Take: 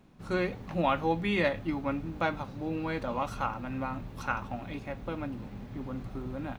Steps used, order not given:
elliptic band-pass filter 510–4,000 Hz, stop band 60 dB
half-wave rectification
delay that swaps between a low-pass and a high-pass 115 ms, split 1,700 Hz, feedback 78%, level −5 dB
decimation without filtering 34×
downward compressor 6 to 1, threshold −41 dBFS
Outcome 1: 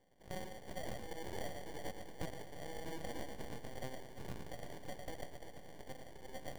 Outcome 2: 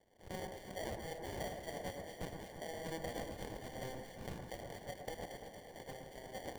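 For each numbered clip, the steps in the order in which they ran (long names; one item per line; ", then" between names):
elliptic band-pass filter, then half-wave rectification, then downward compressor, then delay that swaps between a low-pass and a high-pass, then decimation without filtering
half-wave rectification, then elliptic band-pass filter, then downward compressor, then decimation without filtering, then delay that swaps between a low-pass and a high-pass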